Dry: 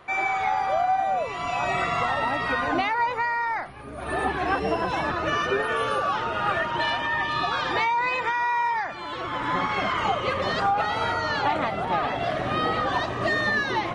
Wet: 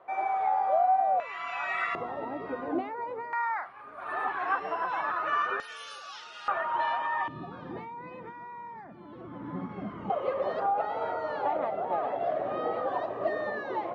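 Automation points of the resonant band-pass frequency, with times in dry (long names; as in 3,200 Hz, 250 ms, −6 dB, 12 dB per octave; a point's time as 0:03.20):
resonant band-pass, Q 1.9
660 Hz
from 0:01.20 1,700 Hz
from 0:01.95 370 Hz
from 0:03.33 1,200 Hz
from 0:05.60 5,500 Hz
from 0:06.48 960 Hz
from 0:07.28 210 Hz
from 0:10.10 570 Hz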